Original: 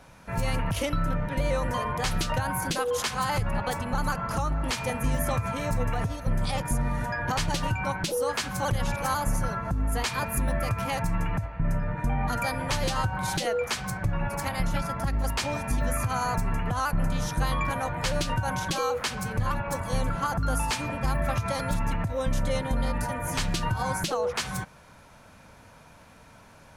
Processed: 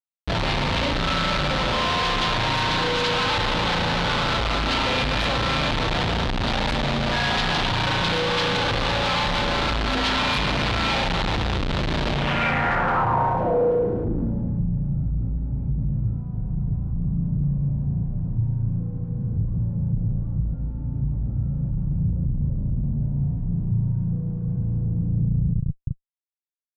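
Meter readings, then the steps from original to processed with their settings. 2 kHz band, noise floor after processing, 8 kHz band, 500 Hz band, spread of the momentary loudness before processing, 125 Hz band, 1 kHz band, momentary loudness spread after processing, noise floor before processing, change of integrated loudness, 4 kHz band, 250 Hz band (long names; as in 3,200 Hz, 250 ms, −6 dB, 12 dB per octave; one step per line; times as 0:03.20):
+7.0 dB, −32 dBFS, −6.0 dB, +4.0 dB, 2 LU, +6.0 dB, +4.5 dB, 6 LU, −52 dBFS, +5.5 dB, +10.5 dB, +5.5 dB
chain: spring reverb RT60 3.7 s, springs 35 ms, chirp 20 ms, DRR −4 dB
comparator with hysteresis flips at −34 dBFS
low-pass filter sweep 3,800 Hz → 140 Hz, 0:12.10–0:14.72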